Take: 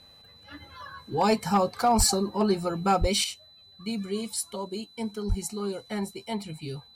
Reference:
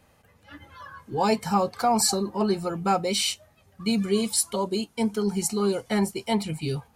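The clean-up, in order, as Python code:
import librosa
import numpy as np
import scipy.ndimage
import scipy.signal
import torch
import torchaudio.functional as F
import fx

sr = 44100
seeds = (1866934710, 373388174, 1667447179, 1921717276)

y = fx.fix_declip(x, sr, threshold_db=-14.5)
y = fx.notch(y, sr, hz=4000.0, q=30.0)
y = fx.highpass(y, sr, hz=140.0, slope=24, at=(1.97, 2.09), fade=0.02)
y = fx.highpass(y, sr, hz=140.0, slope=24, at=(3.0, 3.12), fade=0.02)
y = fx.highpass(y, sr, hz=140.0, slope=24, at=(5.28, 5.4), fade=0.02)
y = fx.gain(y, sr, db=fx.steps((0.0, 0.0), (3.24, 7.5)))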